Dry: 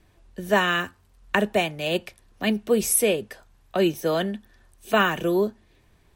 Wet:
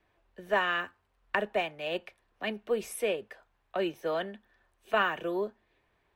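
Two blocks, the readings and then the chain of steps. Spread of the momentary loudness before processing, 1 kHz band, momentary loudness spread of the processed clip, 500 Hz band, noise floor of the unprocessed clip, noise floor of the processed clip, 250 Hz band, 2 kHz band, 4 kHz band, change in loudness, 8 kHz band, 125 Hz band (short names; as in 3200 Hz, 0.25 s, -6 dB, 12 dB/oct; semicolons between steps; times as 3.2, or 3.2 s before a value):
10 LU, -6.0 dB, 11 LU, -8.0 dB, -60 dBFS, -74 dBFS, -13.5 dB, -6.0 dB, -9.0 dB, -8.5 dB, -20.0 dB, -16.0 dB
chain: three-band isolator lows -12 dB, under 390 Hz, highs -15 dB, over 3300 Hz; added harmonics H 2 -21 dB, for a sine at -5 dBFS; gain -5.5 dB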